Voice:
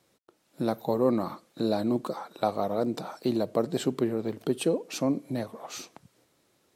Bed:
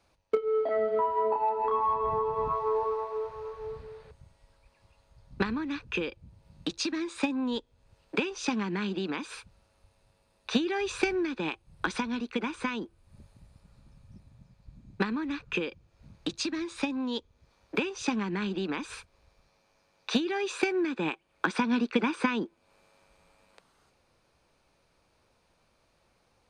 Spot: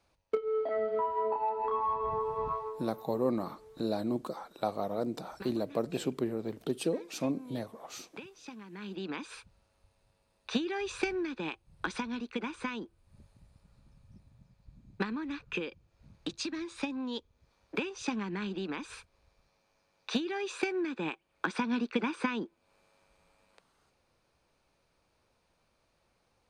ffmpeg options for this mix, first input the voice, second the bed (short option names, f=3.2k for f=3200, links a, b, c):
-filter_complex "[0:a]adelay=2200,volume=-5.5dB[a];[1:a]volume=8.5dB,afade=t=out:st=2.53:d=0.23:silence=0.223872,afade=t=in:st=8.7:d=0.42:silence=0.237137[b];[a][b]amix=inputs=2:normalize=0"